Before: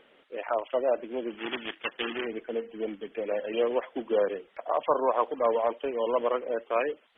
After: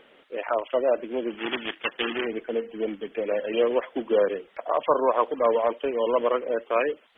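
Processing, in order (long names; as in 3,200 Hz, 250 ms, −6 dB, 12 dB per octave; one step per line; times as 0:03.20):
dynamic equaliser 780 Hz, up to −4 dB, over −40 dBFS, Q 2.9
level +4.5 dB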